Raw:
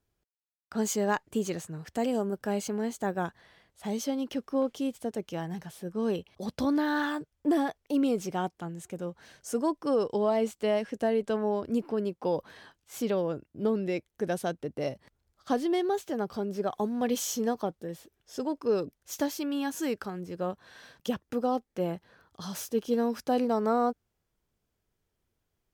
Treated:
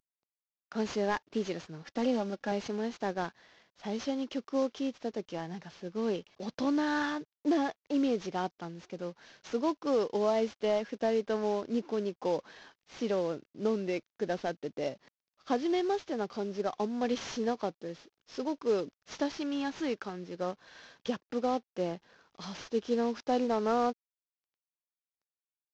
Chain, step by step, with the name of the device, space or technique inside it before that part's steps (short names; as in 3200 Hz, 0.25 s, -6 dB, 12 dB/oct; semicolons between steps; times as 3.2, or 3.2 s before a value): early wireless headset (HPF 190 Hz 12 dB/oct; CVSD 32 kbps); 1.82–2.52 comb 3.6 ms, depth 57%; gain -1.5 dB